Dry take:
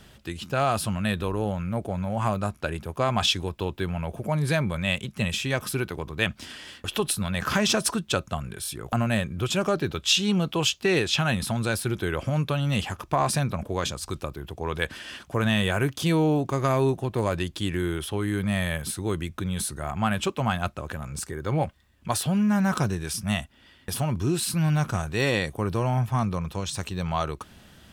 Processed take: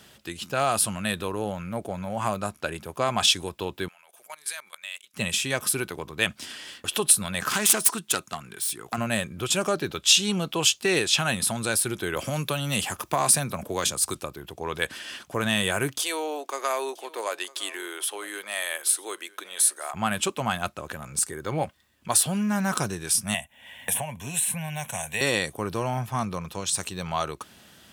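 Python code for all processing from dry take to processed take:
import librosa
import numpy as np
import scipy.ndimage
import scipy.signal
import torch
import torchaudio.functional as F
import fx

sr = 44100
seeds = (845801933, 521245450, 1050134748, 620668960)

y = fx.chain(x, sr, fx.highpass(hz=1300.0, slope=12),
    fx.high_shelf(hz=6300.0, db=6.0),
    fx.level_steps(step_db=19), at=(3.88, 5.14))
y = fx.chain(y, sr, fx.self_delay(depth_ms=0.12),
    fx.highpass(hz=230.0, slope=6),
    fx.peak_eq(hz=560.0, db=-10.0, octaves=0.34), at=(7.49, 8.98))
y = fx.chain(y, sr, fx.high_shelf(hz=12000.0, db=10.5),
    fx.band_squash(depth_pct=40), at=(12.16, 14.15))
y = fx.chain(y, sr, fx.bessel_highpass(hz=580.0, order=6),
    fx.echo_single(ms=953, db=-21.0), at=(16.0, 19.94))
y = fx.chain(y, sr, fx.low_shelf(hz=260.0, db=-5.5),
    fx.fixed_phaser(hz=1300.0, stages=6),
    fx.band_squash(depth_pct=100), at=(23.34, 25.21))
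y = fx.dynamic_eq(y, sr, hz=9100.0, q=1.5, threshold_db=-48.0, ratio=4.0, max_db=7)
y = fx.highpass(y, sr, hz=240.0, slope=6)
y = fx.high_shelf(y, sr, hz=4300.0, db=5.5)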